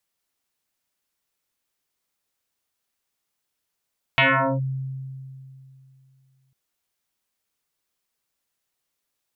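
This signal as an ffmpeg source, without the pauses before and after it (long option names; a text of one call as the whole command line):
ffmpeg -f lavfi -i "aevalsrc='0.224*pow(10,-3*t/2.78)*sin(2*PI*133*t+7.4*clip(1-t/0.42,0,1)*sin(2*PI*3.03*133*t))':duration=2.35:sample_rate=44100" out.wav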